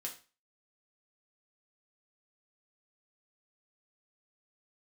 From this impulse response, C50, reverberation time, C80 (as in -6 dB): 10.5 dB, 0.35 s, 16.0 dB